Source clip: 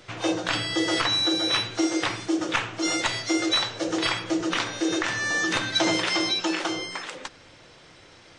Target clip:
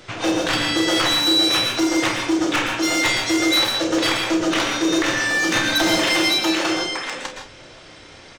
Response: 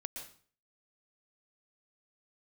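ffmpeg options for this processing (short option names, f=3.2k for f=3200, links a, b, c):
-filter_complex "[0:a]asoftclip=type=hard:threshold=-21.5dB,aecho=1:1:31|48:0.355|0.237[a];[1:a]atrim=start_sample=2205,afade=t=out:st=0.22:d=0.01,atrim=end_sample=10143[b];[a][b]afir=irnorm=-1:irlink=0,volume=9dB"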